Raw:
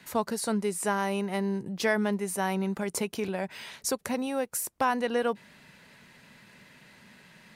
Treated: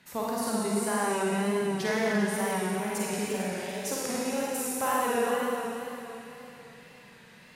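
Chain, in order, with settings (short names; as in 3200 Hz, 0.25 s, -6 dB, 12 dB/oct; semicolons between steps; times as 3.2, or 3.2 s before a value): Schroeder reverb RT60 3.4 s, DRR -6.5 dB; wow and flutter 53 cents; gain -6 dB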